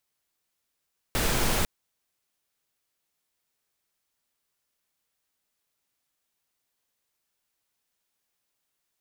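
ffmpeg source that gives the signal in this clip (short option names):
-f lavfi -i "anoisesrc=c=pink:a=0.288:d=0.5:r=44100:seed=1"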